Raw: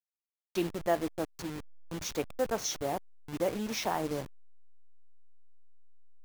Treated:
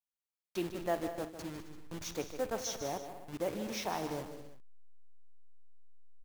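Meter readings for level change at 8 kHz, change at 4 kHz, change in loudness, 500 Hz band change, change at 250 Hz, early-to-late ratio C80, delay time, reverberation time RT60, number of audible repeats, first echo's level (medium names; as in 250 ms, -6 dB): -4.5 dB, -4.5 dB, -4.5 dB, -4.5 dB, -4.5 dB, no reverb, 55 ms, no reverb, 5, -17.0 dB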